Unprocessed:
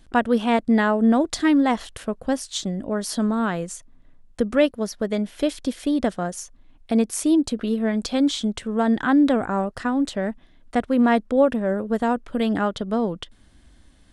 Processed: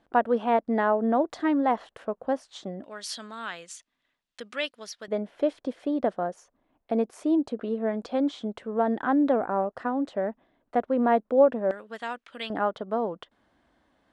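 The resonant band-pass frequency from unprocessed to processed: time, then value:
resonant band-pass, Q 1
710 Hz
from 0:02.84 3,300 Hz
from 0:05.08 640 Hz
from 0:11.71 2,800 Hz
from 0:12.50 790 Hz

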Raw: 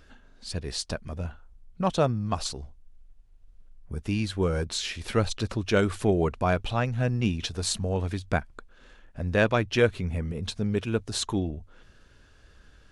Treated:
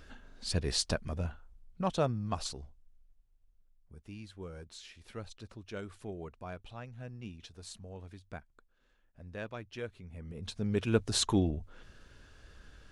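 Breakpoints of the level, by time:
0:00.79 +1 dB
0:01.85 −6.5 dB
0:02.52 −6.5 dB
0:03.99 −19 dB
0:10.09 −19 dB
0:10.32 −11.5 dB
0:10.98 0 dB

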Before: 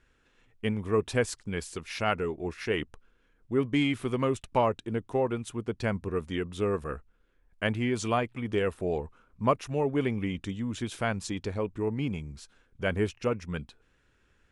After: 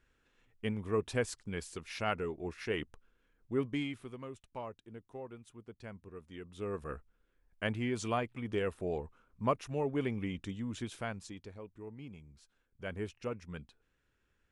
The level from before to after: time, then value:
0:03.60 −6 dB
0:04.20 −18 dB
0:06.25 −18 dB
0:06.91 −6 dB
0:10.81 −6 dB
0:11.59 −17 dB
0:12.12 −17 dB
0:13.21 −10 dB

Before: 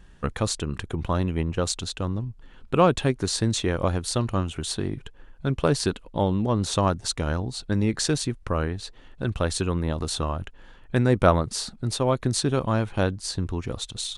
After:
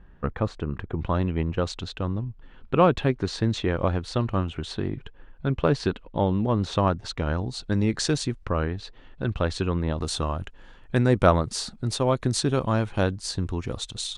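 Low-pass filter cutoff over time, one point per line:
1,700 Hz
from 0:01.01 3,400 Hz
from 0:07.38 7,200 Hz
from 0:08.45 4,100 Hz
from 0:10.01 9,300 Hz

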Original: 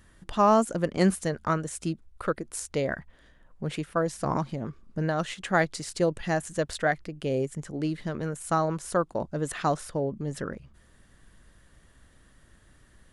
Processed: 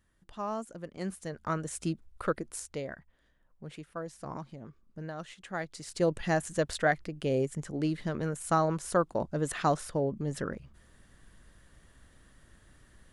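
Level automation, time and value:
0:01.00 −15 dB
0:01.73 −2 dB
0:02.43 −2 dB
0:02.97 −12.5 dB
0:05.63 −12.5 dB
0:06.10 −1 dB

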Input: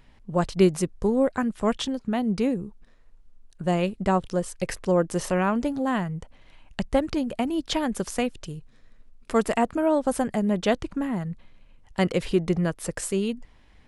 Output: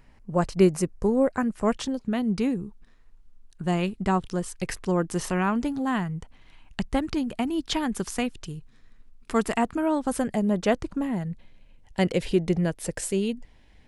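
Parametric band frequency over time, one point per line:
parametric band −8.5 dB 0.45 octaves
0:01.82 3,500 Hz
0:02.25 560 Hz
0:10.08 560 Hz
0:10.72 4,200 Hz
0:11.12 1,200 Hz

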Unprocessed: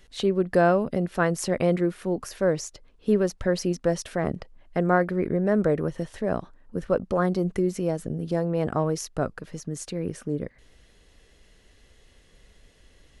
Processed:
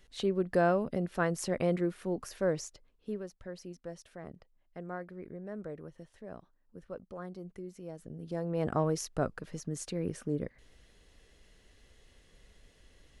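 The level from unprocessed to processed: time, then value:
0:02.63 −7 dB
0:03.30 −19.5 dB
0:07.77 −19.5 dB
0:08.25 −12.5 dB
0:08.70 −4.5 dB

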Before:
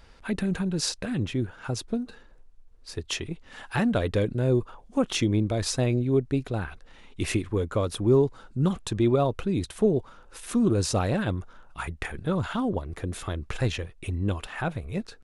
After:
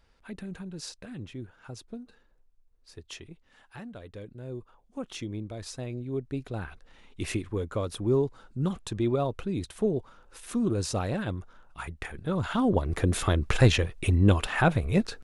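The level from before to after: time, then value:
0:03.22 −12 dB
0:03.95 −19.5 dB
0:05.05 −12 dB
0:05.88 −12 dB
0:06.64 −4.5 dB
0:12.21 −4.5 dB
0:12.92 +7 dB

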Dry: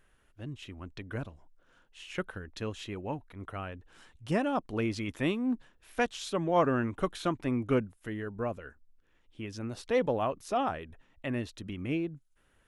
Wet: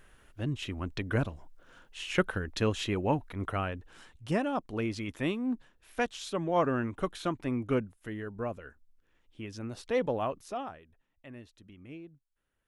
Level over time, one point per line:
0:03.44 +8 dB
0:04.48 −1.5 dB
0:10.36 −1.5 dB
0:10.83 −14 dB

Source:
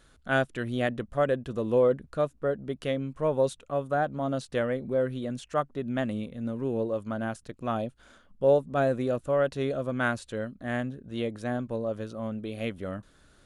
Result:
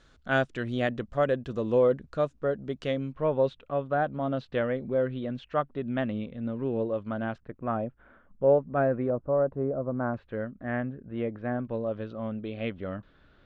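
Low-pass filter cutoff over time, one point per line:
low-pass filter 24 dB per octave
6,600 Hz
from 0:03.12 3,600 Hz
from 0:07.38 2,000 Hz
from 0:09.10 1,100 Hz
from 0:10.14 2,200 Hz
from 0:11.65 3,500 Hz

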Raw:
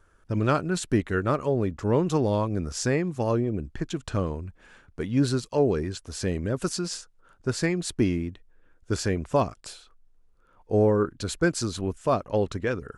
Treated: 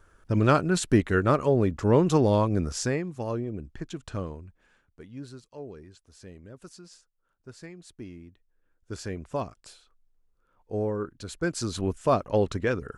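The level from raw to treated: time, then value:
0:02.62 +2.5 dB
0:03.08 −6 dB
0:04.22 −6 dB
0:05.26 −18.5 dB
0:08.03 −18.5 dB
0:09.15 −8 dB
0:11.30 −8 dB
0:11.81 +1 dB

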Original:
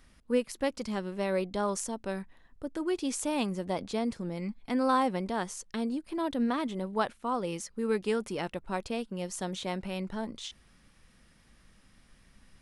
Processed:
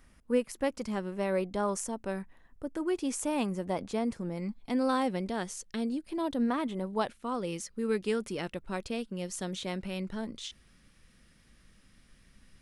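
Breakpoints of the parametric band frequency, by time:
parametric band −6 dB 0.88 octaves
0:04.31 4,000 Hz
0:04.88 1,000 Hz
0:06.05 1,000 Hz
0:06.70 6,100 Hz
0:07.14 850 Hz

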